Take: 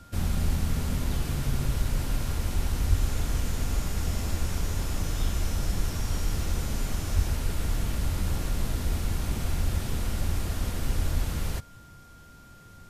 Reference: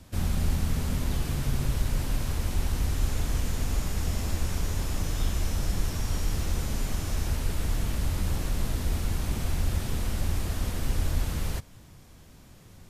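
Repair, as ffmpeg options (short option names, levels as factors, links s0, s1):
-filter_complex "[0:a]bandreject=f=1400:w=30,asplit=3[s0][s1][s2];[s0]afade=t=out:st=2.89:d=0.02[s3];[s1]highpass=f=140:w=0.5412,highpass=f=140:w=1.3066,afade=t=in:st=2.89:d=0.02,afade=t=out:st=3.01:d=0.02[s4];[s2]afade=t=in:st=3.01:d=0.02[s5];[s3][s4][s5]amix=inputs=3:normalize=0,asplit=3[s6][s7][s8];[s6]afade=t=out:st=7.15:d=0.02[s9];[s7]highpass=f=140:w=0.5412,highpass=f=140:w=1.3066,afade=t=in:st=7.15:d=0.02,afade=t=out:st=7.27:d=0.02[s10];[s8]afade=t=in:st=7.27:d=0.02[s11];[s9][s10][s11]amix=inputs=3:normalize=0"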